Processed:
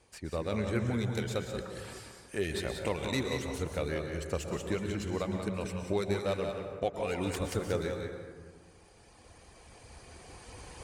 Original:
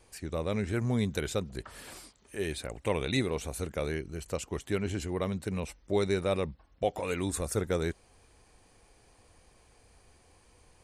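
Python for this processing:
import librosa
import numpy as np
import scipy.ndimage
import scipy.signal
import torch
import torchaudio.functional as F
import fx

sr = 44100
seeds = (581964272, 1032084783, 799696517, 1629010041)

y = fx.tracing_dist(x, sr, depth_ms=0.13)
y = fx.recorder_agc(y, sr, target_db=-19.0, rise_db_per_s=6.4, max_gain_db=30)
y = scipy.signal.sosfilt(scipy.signal.butter(2, 42.0, 'highpass', fs=sr, output='sos'), y)
y = fx.dereverb_blind(y, sr, rt60_s=1.0)
y = scipy.signal.sosfilt(scipy.signal.butter(2, 10000.0, 'lowpass', fs=sr, output='sos'), y)
y = y + 10.0 ** (-7.0 / 20.0) * np.pad(y, (int(182 * sr / 1000.0), 0))[:len(y)]
y = fx.rev_plate(y, sr, seeds[0], rt60_s=1.7, hf_ratio=0.45, predelay_ms=105, drr_db=5.0)
y = y * 10.0 ** (-3.0 / 20.0)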